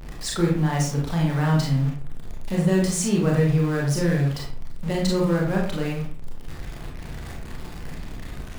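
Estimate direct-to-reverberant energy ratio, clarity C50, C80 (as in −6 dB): −2.5 dB, 3.0 dB, 7.5 dB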